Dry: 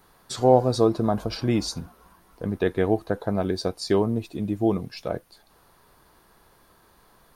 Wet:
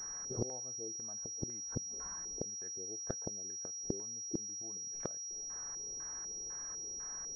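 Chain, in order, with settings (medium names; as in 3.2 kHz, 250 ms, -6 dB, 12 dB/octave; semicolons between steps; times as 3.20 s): LFO low-pass square 2 Hz 430–1700 Hz; inverted gate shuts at -20 dBFS, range -33 dB; class-D stage that switches slowly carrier 5.7 kHz; trim -1.5 dB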